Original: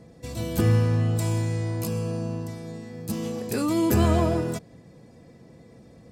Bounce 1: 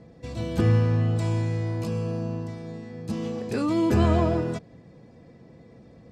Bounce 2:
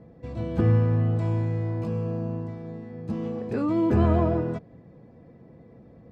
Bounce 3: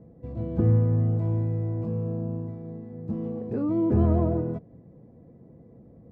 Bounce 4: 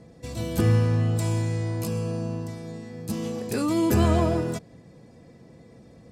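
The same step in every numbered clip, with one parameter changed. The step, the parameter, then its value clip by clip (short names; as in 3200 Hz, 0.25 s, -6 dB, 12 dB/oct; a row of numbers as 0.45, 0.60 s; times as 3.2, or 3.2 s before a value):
Bessel low-pass, frequency: 4000, 1400, 530, 12000 Hz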